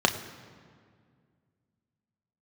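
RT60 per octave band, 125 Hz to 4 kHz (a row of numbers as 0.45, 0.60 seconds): 2.9, 2.7, 2.2, 1.9, 1.7, 1.3 seconds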